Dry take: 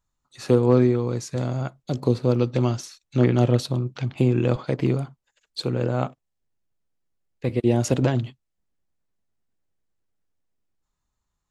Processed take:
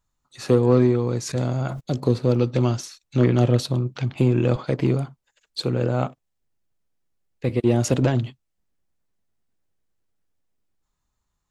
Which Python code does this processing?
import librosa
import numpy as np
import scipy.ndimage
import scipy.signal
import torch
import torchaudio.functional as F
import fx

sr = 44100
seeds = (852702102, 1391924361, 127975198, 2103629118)

p1 = 10.0 ** (-16.5 / 20.0) * np.tanh(x / 10.0 ** (-16.5 / 20.0))
p2 = x + (p1 * 10.0 ** (-4.0 / 20.0))
p3 = fx.sustainer(p2, sr, db_per_s=64.0, at=(1.25, 1.79), fade=0.02)
y = p3 * 10.0 ** (-2.0 / 20.0)